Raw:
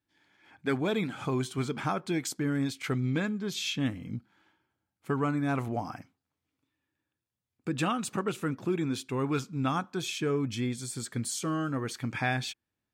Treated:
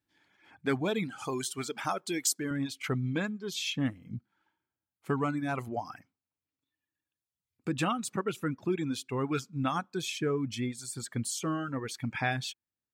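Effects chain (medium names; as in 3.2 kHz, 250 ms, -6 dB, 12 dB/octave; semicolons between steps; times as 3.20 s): reverb removal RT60 1.6 s; 1.18–2.51 s: tone controls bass -10 dB, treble +9 dB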